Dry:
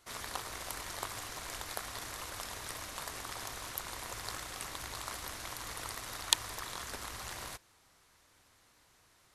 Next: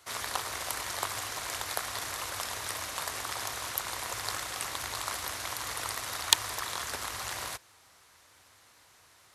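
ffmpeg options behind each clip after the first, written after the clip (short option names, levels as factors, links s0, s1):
-filter_complex "[0:a]acrossover=split=440[s0][s1];[s1]acontrast=76[s2];[s0][s2]amix=inputs=2:normalize=0,highpass=54,equalizer=f=93:t=o:w=0.53:g=5.5"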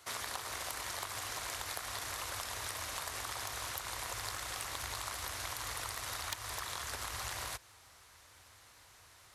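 -af "asoftclip=type=tanh:threshold=0.112,acompressor=threshold=0.0141:ratio=6,asubboost=boost=2.5:cutoff=110"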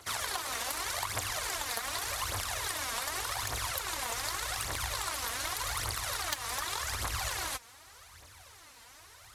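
-af "aphaser=in_gain=1:out_gain=1:delay=4.5:decay=0.63:speed=0.85:type=triangular,volume=1.5"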